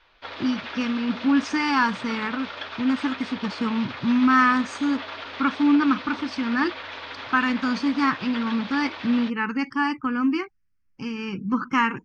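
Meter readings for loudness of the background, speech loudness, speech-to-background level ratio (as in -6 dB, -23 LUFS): -35.5 LUFS, -24.0 LUFS, 11.5 dB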